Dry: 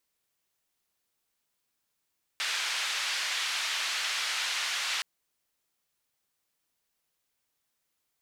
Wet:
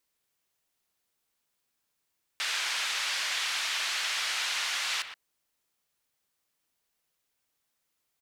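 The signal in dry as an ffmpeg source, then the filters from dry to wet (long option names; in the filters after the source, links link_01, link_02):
-f lavfi -i "anoisesrc=color=white:duration=2.62:sample_rate=44100:seed=1,highpass=frequency=1400,lowpass=frequency=4100,volume=-17.9dB"
-filter_complex "[0:a]asplit=2[link_01][link_02];[link_02]adelay=120,highpass=300,lowpass=3400,asoftclip=type=hard:threshold=-29.5dB,volume=-9dB[link_03];[link_01][link_03]amix=inputs=2:normalize=0"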